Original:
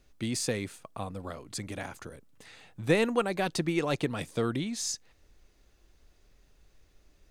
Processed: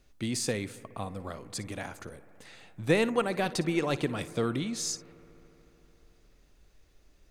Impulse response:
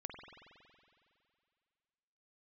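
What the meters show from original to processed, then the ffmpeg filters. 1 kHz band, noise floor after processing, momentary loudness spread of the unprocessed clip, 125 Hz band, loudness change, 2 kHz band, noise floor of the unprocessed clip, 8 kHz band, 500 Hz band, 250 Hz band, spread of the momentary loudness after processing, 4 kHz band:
0.0 dB, −63 dBFS, 14 LU, 0.0 dB, 0.0 dB, 0.0 dB, −65 dBFS, 0.0 dB, 0.0 dB, 0.0 dB, 14 LU, 0.0 dB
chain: -filter_complex "[0:a]asplit=2[link_01][link_02];[1:a]atrim=start_sample=2205,asetrate=28224,aresample=44100,adelay=57[link_03];[link_02][link_03]afir=irnorm=-1:irlink=0,volume=-14.5dB[link_04];[link_01][link_04]amix=inputs=2:normalize=0"

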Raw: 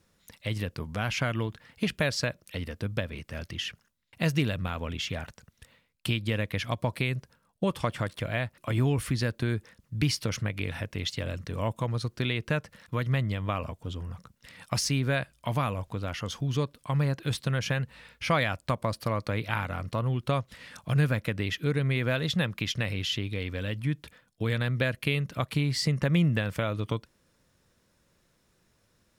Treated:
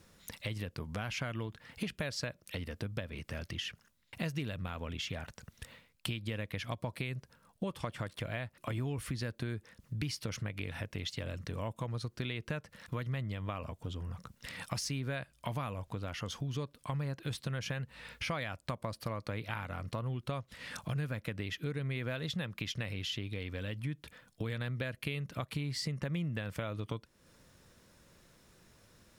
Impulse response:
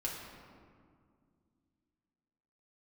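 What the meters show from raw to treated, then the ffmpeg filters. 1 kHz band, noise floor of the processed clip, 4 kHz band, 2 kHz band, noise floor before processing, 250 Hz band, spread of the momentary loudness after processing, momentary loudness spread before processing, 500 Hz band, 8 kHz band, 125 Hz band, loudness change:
−9.0 dB, −71 dBFS, −7.5 dB, −9.0 dB, −70 dBFS, −9.0 dB, 6 LU, 9 LU, −9.5 dB, −7.5 dB, −9.0 dB, −9.0 dB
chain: -af "acompressor=threshold=-46dB:ratio=3,volume=6dB"

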